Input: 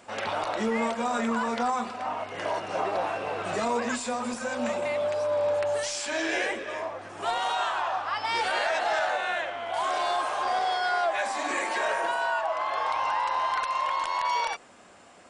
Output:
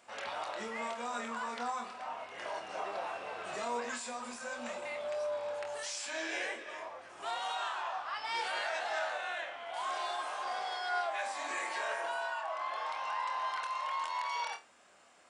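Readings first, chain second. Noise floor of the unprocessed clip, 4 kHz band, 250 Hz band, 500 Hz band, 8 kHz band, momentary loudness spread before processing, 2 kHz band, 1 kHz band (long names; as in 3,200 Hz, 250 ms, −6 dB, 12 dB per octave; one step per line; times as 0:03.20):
−52 dBFS, −7.5 dB, −16.0 dB, −11.0 dB, −7.0 dB, 5 LU, −8.0 dB, −9.5 dB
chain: low-shelf EQ 460 Hz −11 dB
flutter between parallel walls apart 4.3 metres, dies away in 0.21 s
level −8 dB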